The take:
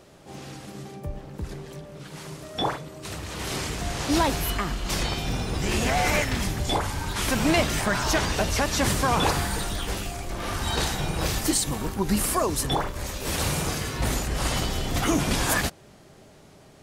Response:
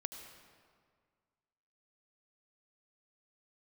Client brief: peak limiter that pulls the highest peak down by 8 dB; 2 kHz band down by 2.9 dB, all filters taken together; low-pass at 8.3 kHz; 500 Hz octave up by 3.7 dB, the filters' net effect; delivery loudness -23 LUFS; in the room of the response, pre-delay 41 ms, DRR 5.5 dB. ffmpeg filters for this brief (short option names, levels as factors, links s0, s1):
-filter_complex "[0:a]lowpass=8300,equalizer=f=500:t=o:g=5,equalizer=f=2000:t=o:g=-4,alimiter=limit=0.158:level=0:latency=1,asplit=2[s0][s1];[1:a]atrim=start_sample=2205,adelay=41[s2];[s1][s2]afir=irnorm=-1:irlink=0,volume=0.631[s3];[s0][s3]amix=inputs=2:normalize=0,volume=1.5"